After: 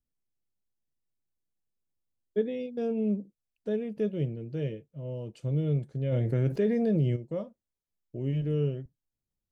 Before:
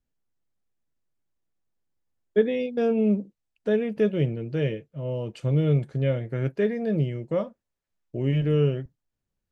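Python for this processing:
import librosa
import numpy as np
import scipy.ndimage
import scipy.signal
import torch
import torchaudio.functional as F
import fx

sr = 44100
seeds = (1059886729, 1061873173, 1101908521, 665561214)

y = fx.peak_eq(x, sr, hz=1600.0, db=-8.5, octaves=2.3)
y = fx.env_flatten(y, sr, amount_pct=70, at=(6.11, 7.15), fade=0.02)
y = y * librosa.db_to_amplitude(-5.5)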